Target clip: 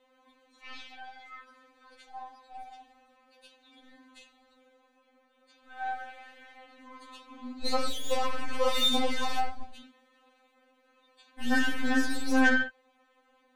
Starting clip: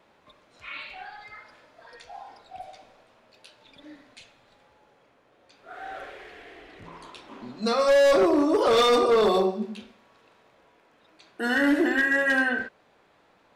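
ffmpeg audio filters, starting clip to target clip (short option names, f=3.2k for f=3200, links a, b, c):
-af "bandreject=f=5.2k:w=6.3,aeval=exprs='0.237*(cos(1*acos(clip(val(0)/0.237,-1,1)))-cos(1*PI/2))+0.00168*(cos(4*acos(clip(val(0)/0.237,-1,1)))-cos(4*PI/2))+0.0266*(cos(8*acos(clip(val(0)/0.237,-1,1)))-cos(8*PI/2))':c=same,afftfilt=real='re*3.46*eq(mod(b,12),0)':imag='im*3.46*eq(mod(b,12),0)':win_size=2048:overlap=0.75,volume=-2.5dB"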